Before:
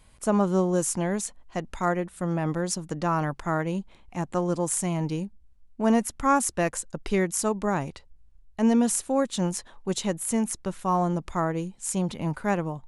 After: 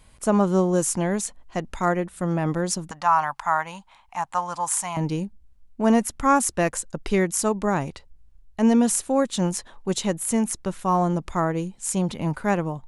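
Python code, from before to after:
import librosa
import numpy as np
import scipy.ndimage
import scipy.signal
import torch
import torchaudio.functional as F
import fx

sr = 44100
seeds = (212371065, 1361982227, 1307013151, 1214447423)

y = fx.low_shelf_res(x, sr, hz=590.0, db=-14.0, q=3.0, at=(2.91, 4.97))
y = y * librosa.db_to_amplitude(3.0)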